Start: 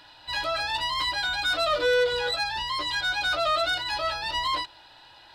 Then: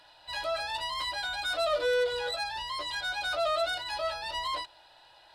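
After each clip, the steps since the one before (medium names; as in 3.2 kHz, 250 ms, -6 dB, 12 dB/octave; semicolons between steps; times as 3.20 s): fifteen-band graphic EQ 100 Hz -5 dB, 250 Hz -7 dB, 630 Hz +7 dB, 10 kHz +7 dB; trim -7 dB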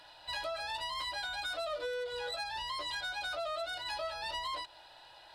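compression, threshold -37 dBFS, peak gain reduction 12.5 dB; trim +1.5 dB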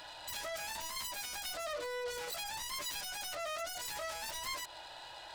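self-modulated delay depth 0.29 ms; peak limiter -38.5 dBFS, peak gain reduction 10 dB; trim +6.5 dB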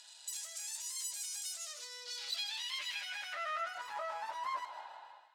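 fade out at the end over 0.58 s; band-pass sweep 7.6 kHz -> 1 kHz, 1.54–4.00 s; feedback echo behind a high-pass 156 ms, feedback 53%, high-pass 1.6 kHz, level -11 dB; trim +7.5 dB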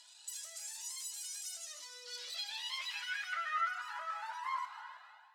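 high-pass sweep 68 Hz -> 1.3 kHz, 1.66–3.12 s; FDN reverb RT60 1.9 s, low-frequency decay 1×, high-frequency decay 0.8×, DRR 10 dB; Shepard-style flanger rising 1.1 Hz; trim +1.5 dB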